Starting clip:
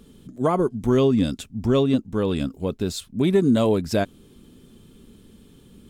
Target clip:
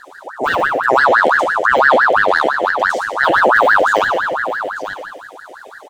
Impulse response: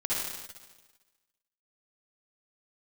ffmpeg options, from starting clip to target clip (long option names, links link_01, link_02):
-filter_complex "[0:a]deesser=0.9,firequalizer=gain_entry='entry(150,0);entry(300,-17);entry(1100,-1);entry(1600,-6);entry(2500,5);entry(3500,-15);entry(5500,-1);entry(9100,-10)':delay=0.05:min_phase=1,aeval=exprs='clip(val(0),-1,0.0168)':channel_layout=same,asuperstop=centerf=700:order=8:qfactor=0.69,aecho=1:1:894:0.266,asplit=2[link_01][link_02];[1:a]atrim=start_sample=2205[link_03];[link_02][link_03]afir=irnorm=-1:irlink=0,volume=-9dB[link_04];[link_01][link_04]amix=inputs=2:normalize=0,alimiter=level_in=14dB:limit=-1dB:release=50:level=0:latency=1,aeval=exprs='val(0)*sin(2*PI*1100*n/s+1100*0.55/5.9*sin(2*PI*5.9*n/s))':channel_layout=same"